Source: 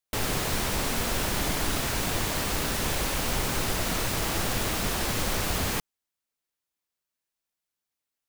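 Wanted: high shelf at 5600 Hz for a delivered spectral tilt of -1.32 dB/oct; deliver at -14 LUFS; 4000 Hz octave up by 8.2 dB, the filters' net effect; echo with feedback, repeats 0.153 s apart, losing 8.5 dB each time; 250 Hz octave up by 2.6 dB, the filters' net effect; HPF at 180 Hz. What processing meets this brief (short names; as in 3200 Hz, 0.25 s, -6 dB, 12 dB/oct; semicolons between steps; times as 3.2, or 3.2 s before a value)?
HPF 180 Hz; bell 250 Hz +5 dB; bell 4000 Hz +7 dB; high shelf 5600 Hz +8 dB; feedback echo 0.153 s, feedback 38%, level -8.5 dB; gain +7 dB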